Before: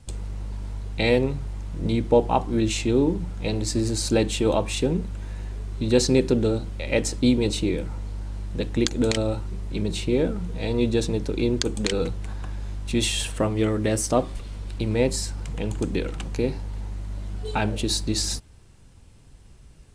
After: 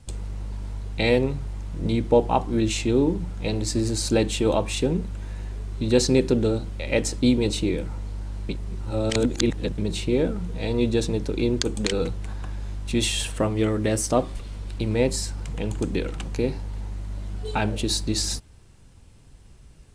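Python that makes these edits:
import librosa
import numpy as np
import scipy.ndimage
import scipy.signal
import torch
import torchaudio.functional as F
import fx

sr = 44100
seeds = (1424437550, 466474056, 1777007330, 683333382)

y = fx.edit(x, sr, fx.reverse_span(start_s=8.49, length_s=1.29), tone=tone)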